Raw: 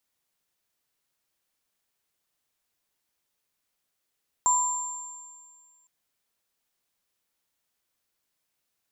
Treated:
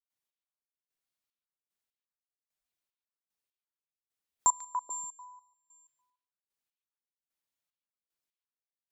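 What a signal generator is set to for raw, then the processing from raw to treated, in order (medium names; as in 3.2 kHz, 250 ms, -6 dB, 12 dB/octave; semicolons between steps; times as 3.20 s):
sine partials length 1.41 s, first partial 995 Hz, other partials 7.35 kHz, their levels -0.5 dB, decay 1.50 s, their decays 2.04 s, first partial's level -20 dB
spectral noise reduction 12 dB; trance gate ".xx......xxxx..." 150 bpm -24 dB; on a send: repeats whose band climbs or falls 144 ms, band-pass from 3.1 kHz, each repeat -1.4 oct, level -2 dB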